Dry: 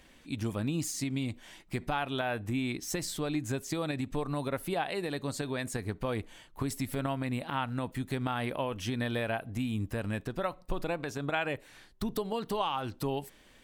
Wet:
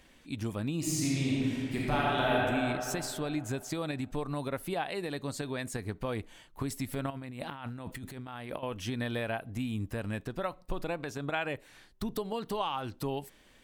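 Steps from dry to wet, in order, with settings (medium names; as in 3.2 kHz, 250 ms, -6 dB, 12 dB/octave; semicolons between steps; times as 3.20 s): 0.77–2.34 s: reverb throw, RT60 2.9 s, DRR -6 dB; 7.10–8.63 s: compressor with a negative ratio -40 dBFS, ratio -1; trim -1.5 dB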